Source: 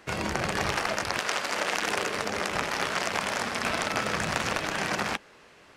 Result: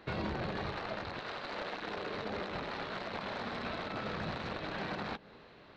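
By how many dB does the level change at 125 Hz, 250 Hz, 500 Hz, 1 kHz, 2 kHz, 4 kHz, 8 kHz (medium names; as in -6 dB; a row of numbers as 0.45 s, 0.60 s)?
-5.0 dB, -5.5 dB, -7.5 dB, -10.0 dB, -12.5 dB, -12.5 dB, -29.0 dB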